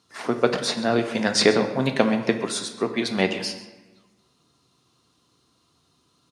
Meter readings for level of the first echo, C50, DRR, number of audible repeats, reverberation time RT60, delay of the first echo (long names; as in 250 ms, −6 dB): −17.0 dB, 9.5 dB, 5.5 dB, 1, 1.2 s, 133 ms